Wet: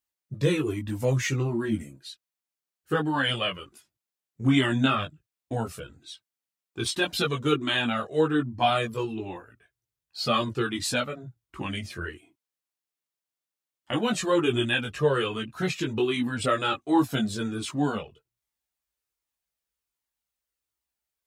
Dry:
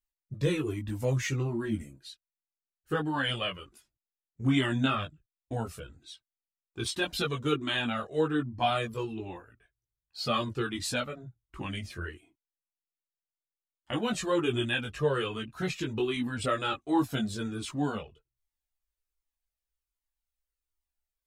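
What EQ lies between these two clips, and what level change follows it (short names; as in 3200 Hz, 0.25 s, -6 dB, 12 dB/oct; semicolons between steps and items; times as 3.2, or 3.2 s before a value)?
HPF 96 Hz; +4.5 dB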